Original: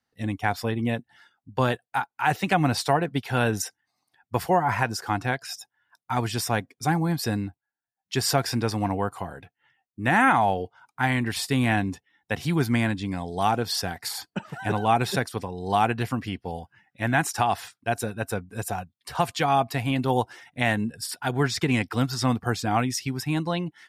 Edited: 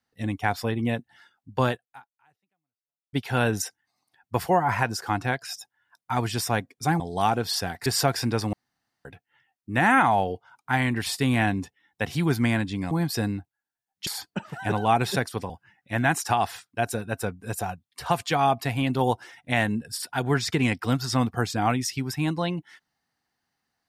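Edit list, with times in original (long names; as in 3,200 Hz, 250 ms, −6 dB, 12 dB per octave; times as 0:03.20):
0:01.68–0:03.13: fade out exponential
0:07.00–0:08.16: swap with 0:13.21–0:14.07
0:08.83–0:09.35: fill with room tone
0:15.50–0:16.59: remove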